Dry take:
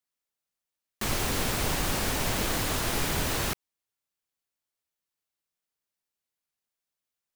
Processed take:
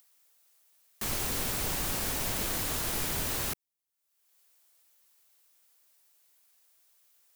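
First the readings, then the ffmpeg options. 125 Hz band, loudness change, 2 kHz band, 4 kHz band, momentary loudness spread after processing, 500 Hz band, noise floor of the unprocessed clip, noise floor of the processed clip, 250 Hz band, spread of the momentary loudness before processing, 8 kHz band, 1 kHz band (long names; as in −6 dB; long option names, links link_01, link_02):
−6.5 dB, −2.5 dB, −6.0 dB, −4.5 dB, 4 LU, −6.5 dB, below −85 dBFS, −84 dBFS, −6.5 dB, 4 LU, −1.5 dB, −6.5 dB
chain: -filter_complex "[0:a]acrossover=split=310[link_01][link_02];[link_02]acompressor=mode=upward:threshold=-48dB:ratio=2.5[link_03];[link_01][link_03]amix=inputs=2:normalize=0,crystalizer=i=1:c=0,volume=-6.5dB"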